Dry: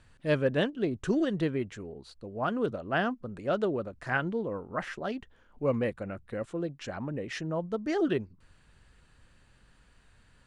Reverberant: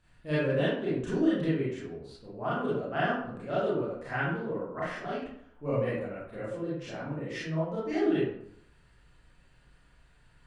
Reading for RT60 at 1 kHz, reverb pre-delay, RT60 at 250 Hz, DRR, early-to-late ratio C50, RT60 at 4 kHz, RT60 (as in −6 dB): 0.70 s, 28 ms, 0.70 s, −10.0 dB, −1.0 dB, 0.40 s, 0.70 s